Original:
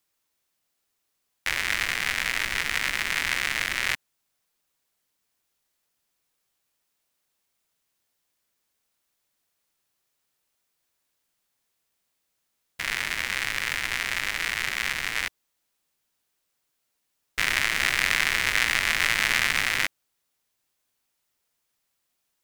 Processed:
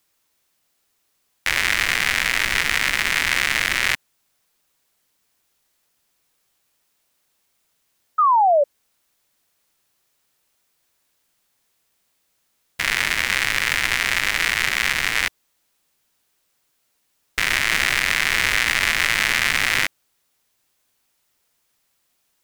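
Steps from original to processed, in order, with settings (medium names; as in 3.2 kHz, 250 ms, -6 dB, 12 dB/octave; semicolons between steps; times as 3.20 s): painted sound fall, 8.18–8.64 s, 550–1300 Hz -23 dBFS; loudness maximiser +9 dB; trim -1 dB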